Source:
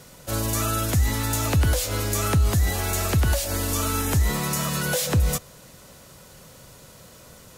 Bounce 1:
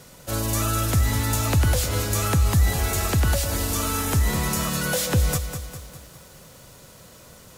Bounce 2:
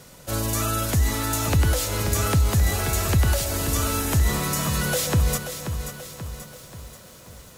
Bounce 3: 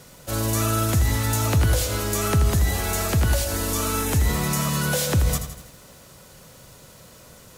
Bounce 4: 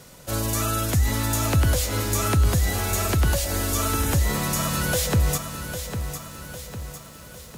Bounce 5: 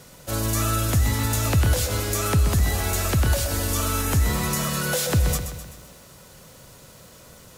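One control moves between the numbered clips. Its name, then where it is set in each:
feedback echo at a low word length, delay time: 201, 533, 82, 803, 128 milliseconds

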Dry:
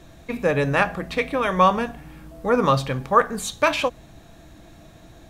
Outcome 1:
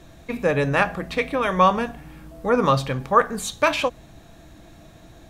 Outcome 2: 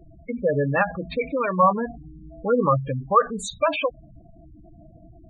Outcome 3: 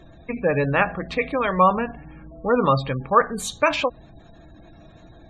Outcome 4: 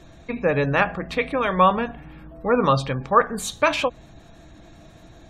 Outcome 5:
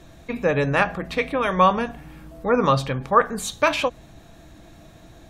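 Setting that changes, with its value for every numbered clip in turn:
gate on every frequency bin, under each frame's peak: −60, −10, −25, −35, −45 decibels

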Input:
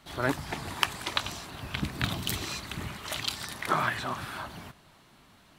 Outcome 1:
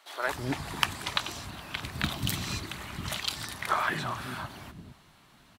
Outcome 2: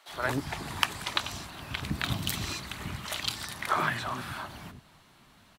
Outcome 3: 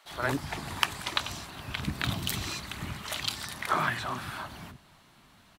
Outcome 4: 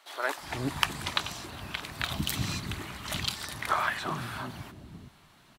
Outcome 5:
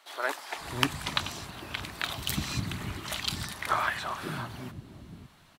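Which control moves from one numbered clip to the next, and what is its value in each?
multiband delay without the direct sound, delay time: 210, 80, 50, 370, 550 milliseconds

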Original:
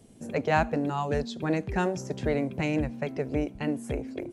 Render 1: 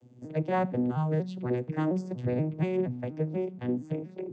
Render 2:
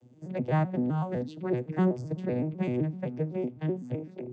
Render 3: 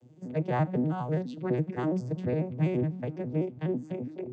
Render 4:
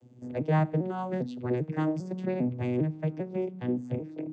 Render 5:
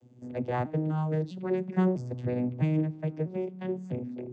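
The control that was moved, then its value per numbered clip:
vocoder with an arpeggio as carrier, a note every: 238, 127, 83, 399, 650 milliseconds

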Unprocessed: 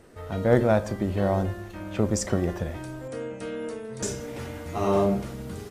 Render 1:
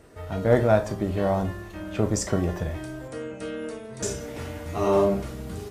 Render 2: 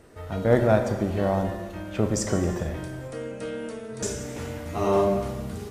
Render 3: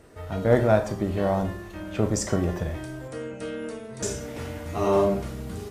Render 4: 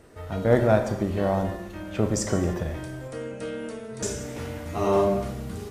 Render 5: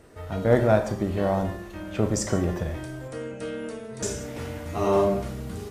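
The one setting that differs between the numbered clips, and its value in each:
reverb whose tail is shaped and stops, gate: 90, 490, 150, 330, 220 milliseconds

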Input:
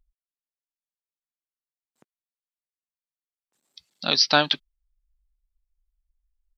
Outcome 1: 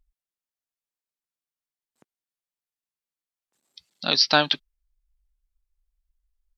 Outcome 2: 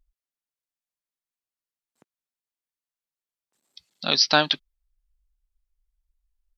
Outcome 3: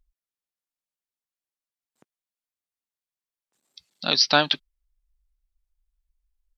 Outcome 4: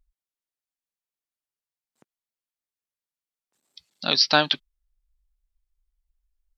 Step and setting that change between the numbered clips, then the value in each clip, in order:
pitch vibrato, speed: 4.2, 1.2, 6.4, 2.8 Hertz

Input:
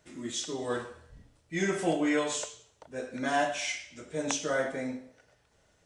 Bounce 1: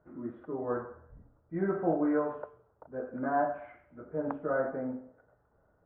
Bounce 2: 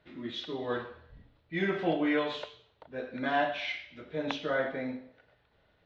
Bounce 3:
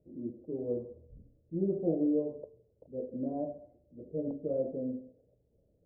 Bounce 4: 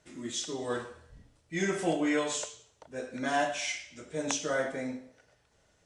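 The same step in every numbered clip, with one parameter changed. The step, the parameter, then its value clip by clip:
elliptic low-pass filter, frequency: 1,400, 4,000, 540, 12,000 Hertz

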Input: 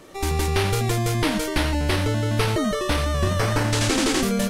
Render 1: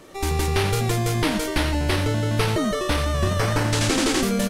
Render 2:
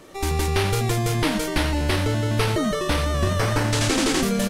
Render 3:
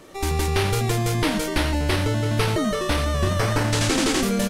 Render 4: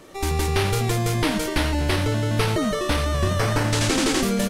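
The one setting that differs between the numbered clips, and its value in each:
echo with shifted repeats, delay time: 88, 536, 341, 224 milliseconds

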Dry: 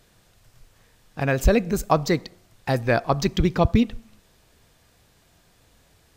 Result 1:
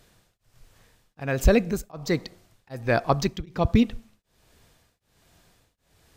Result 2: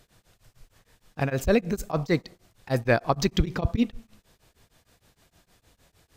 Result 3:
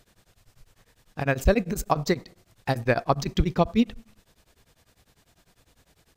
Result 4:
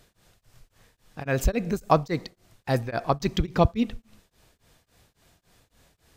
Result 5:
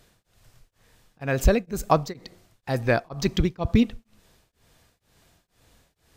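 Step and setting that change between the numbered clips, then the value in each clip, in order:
tremolo along a rectified sine, nulls at: 1.3, 6.5, 10, 3.6, 2.1 Hertz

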